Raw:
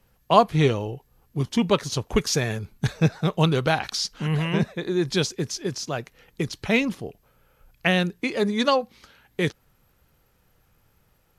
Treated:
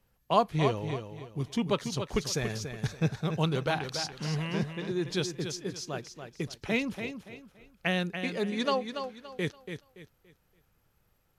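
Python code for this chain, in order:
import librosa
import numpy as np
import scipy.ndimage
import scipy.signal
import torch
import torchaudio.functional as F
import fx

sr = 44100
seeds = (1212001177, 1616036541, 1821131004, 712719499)

y = fx.echo_feedback(x, sr, ms=285, feedback_pct=30, wet_db=-8)
y = F.gain(torch.from_numpy(y), -8.0).numpy()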